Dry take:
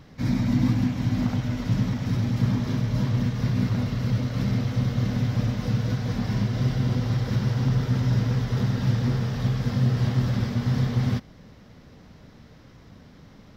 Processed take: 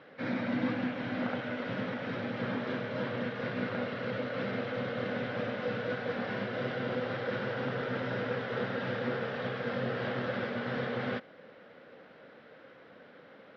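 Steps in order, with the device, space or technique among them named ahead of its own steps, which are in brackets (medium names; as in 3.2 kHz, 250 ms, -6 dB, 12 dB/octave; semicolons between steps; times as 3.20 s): phone earpiece (cabinet simulation 390–3300 Hz, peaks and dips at 520 Hz +9 dB, 990 Hz -4 dB, 1.5 kHz +7 dB)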